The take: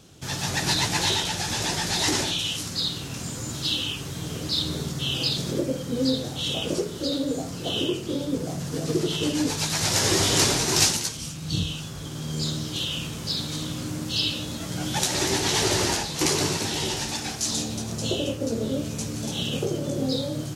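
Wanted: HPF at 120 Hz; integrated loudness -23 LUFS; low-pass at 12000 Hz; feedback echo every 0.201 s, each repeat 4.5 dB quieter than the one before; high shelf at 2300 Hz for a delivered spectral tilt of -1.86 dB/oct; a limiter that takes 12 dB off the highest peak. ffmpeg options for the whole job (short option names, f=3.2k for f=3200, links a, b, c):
-af "highpass=120,lowpass=12k,highshelf=f=2.3k:g=7,alimiter=limit=-12.5dB:level=0:latency=1,aecho=1:1:201|402|603|804|1005|1206|1407|1608|1809:0.596|0.357|0.214|0.129|0.0772|0.0463|0.0278|0.0167|0.01,volume=-1.5dB"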